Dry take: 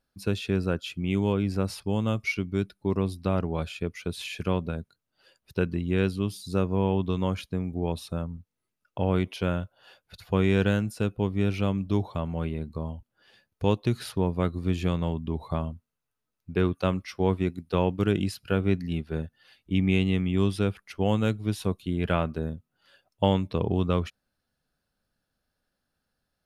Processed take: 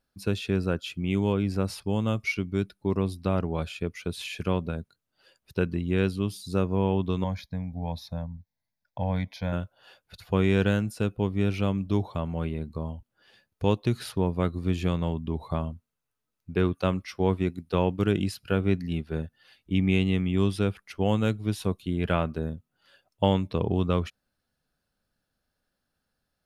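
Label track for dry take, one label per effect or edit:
7.240000	9.530000	static phaser centre 1.9 kHz, stages 8

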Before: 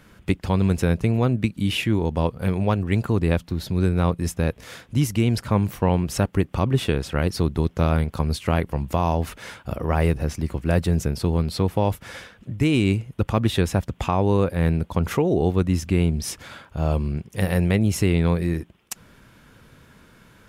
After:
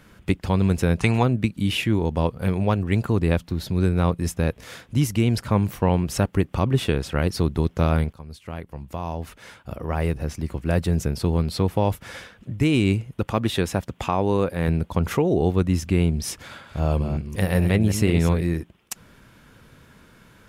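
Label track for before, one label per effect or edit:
0.990000	1.220000	time-frequency box 710–10000 Hz +11 dB
8.130000	11.270000	fade in, from -18.5 dB
13.200000	14.680000	bass shelf 110 Hz -9.5 dB
16.430000	18.410000	chunks repeated in reverse 186 ms, level -8.5 dB

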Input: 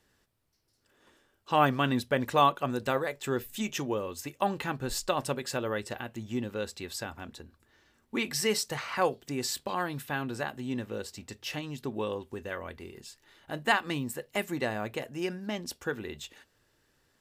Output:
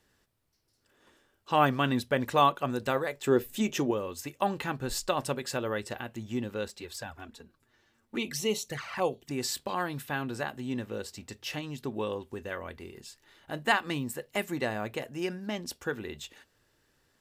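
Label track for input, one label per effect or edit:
3.270000	3.910000	peaking EQ 380 Hz +7.5 dB 2 oct
6.680000	9.310000	touch-sensitive flanger delay at rest 9.4 ms, full sweep at -28 dBFS

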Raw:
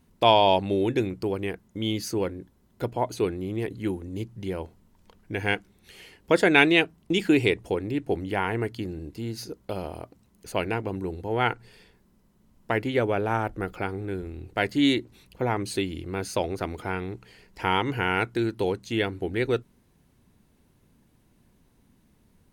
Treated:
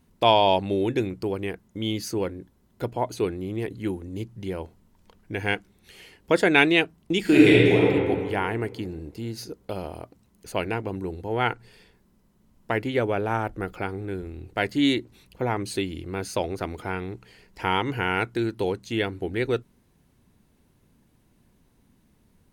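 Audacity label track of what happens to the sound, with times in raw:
7.200000	7.850000	reverb throw, RT60 2.1 s, DRR -7 dB

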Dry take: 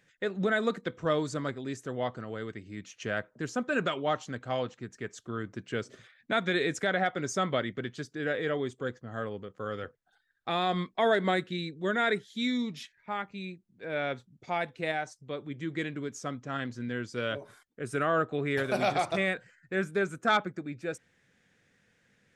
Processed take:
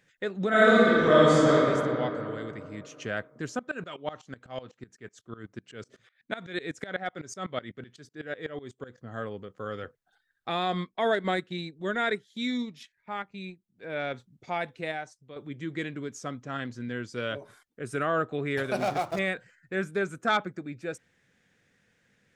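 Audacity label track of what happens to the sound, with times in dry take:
0.480000	1.530000	reverb throw, RT60 2.8 s, DRR -11 dB
3.590000	8.980000	sawtooth tremolo in dB swelling 8 Hz, depth 20 dB
10.810000	14.140000	transient shaper attack -2 dB, sustain -8 dB
14.710000	15.360000	fade out, to -10 dB
18.770000	19.190000	median filter over 15 samples

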